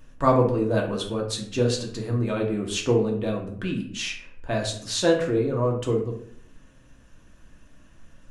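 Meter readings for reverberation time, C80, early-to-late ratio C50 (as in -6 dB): 0.65 s, 10.5 dB, 7.0 dB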